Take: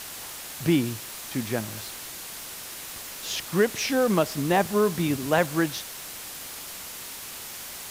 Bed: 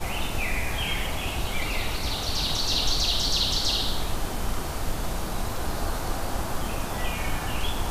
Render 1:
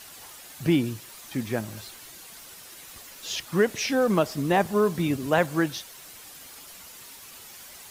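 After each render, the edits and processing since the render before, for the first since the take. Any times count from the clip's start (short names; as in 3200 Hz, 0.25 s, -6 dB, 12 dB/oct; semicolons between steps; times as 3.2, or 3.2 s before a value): denoiser 9 dB, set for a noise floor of -39 dBFS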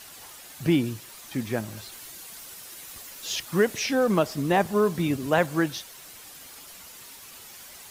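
1.92–3.79 high shelf 6700 Hz +4.5 dB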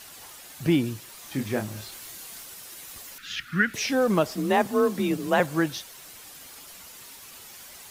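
1.18–2.43 doubler 29 ms -5.5 dB; 3.18–3.74 EQ curve 240 Hz 0 dB, 440 Hz -17 dB, 980 Hz -18 dB, 1400 Hz +10 dB, 7600 Hz -14 dB; 4.35–5.4 frequency shift +35 Hz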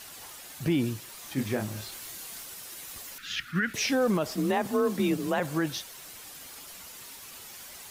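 limiter -17.5 dBFS, peak gain reduction 9.5 dB; attack slew limiter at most 370 dB/s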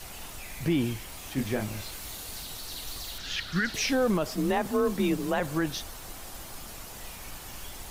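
add bed -16.5 dB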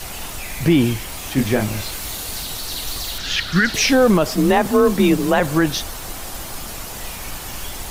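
gain +11.5 dB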